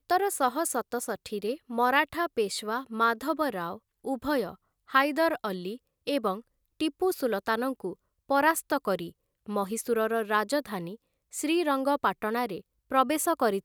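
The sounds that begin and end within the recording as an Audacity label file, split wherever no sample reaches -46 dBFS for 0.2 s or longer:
4.050000	4.550000	sound
4.890000	5.770000	sound
6.070000	6.410000	sound
6.800000	7.940000	sound
8.290000	9.110000	sound
9.460000	10.960000	sound
11.330000	12.610000	sound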